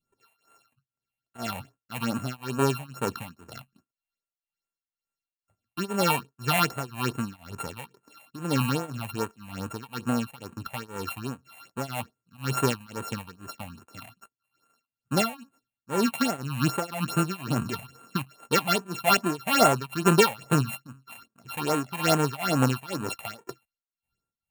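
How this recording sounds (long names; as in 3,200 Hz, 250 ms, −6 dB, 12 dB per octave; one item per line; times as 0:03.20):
a buzz of ramps at a fixed pitch in blocks of 32 samples
phaser sweep stages 6, 2.4 Hz, lowest notch 350–5,000 Hz
tremolo triangle 2 Hz, depth 95%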